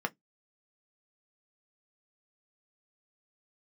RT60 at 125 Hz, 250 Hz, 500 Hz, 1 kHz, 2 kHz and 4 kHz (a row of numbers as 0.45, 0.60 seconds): 0.25, 0.20, 0.15, 0.10, 0.10, 0.10 seconds